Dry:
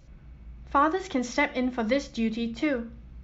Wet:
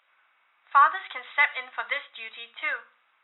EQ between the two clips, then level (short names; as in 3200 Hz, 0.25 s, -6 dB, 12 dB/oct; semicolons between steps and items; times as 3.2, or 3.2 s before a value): dynamic EQ 1600 Hz, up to +3 dB, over -34 dBFS, Q 0.82; ladder high-pass 920 Hz, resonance 30%; brick-wall FIR low-pass 3900 Hz; +8.5 dB